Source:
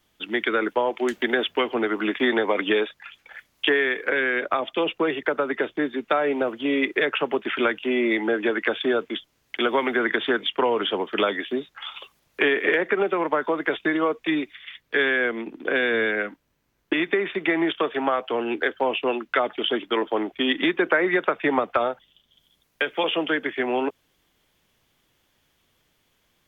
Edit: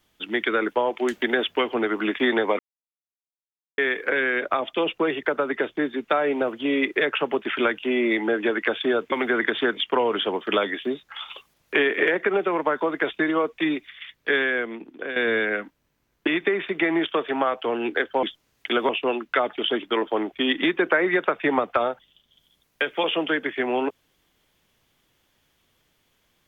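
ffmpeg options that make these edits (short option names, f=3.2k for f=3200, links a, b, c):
-filter_complex "[0:a]asplit=7[a][b][c][d][e][f][g];[a]atrim=end=2.59,asetpts=PTS-STARTPTS,afade=t=out:st=2.586:d=0.004:c=hsin[h];[b]atrim=start=2.59:end=3.78,asetpts=PTS-STARTPTS,volume=0[i];[c]atrim=start=3.78:end=9.122,asetpts=PTS-STARTPTS,afade=t=in:d=0.004:c=hsin[j];[d]atrim=start=9.778:end=15.82,asetpts=PTS-STARTPTS,afade=t=out:st=5.172:d=0.87:silence=0.316228[k];[e]atrim=start=15.82:end=18.892,asetpts=PTS-STARTPTS,afade=t=in:d=0.004:c=hsin:silence=0.316228[l];[f]atrim=start=9.118:end=9.782[m];[g]atrim=start=18.888[n];[h][i][j]concat=n=3:v=0:a=1[o];[k][l]concat=n=2:v=0:a=1[p];[o][p]acrossfade=d=0.004:c1=hsin:c2=hsin[q];[q][m]acrossfade=d=0.004:c1=hsin:c2=hsin[r];[r][n]acrossfade=d=0.004:c1=hsin:c2=hsin"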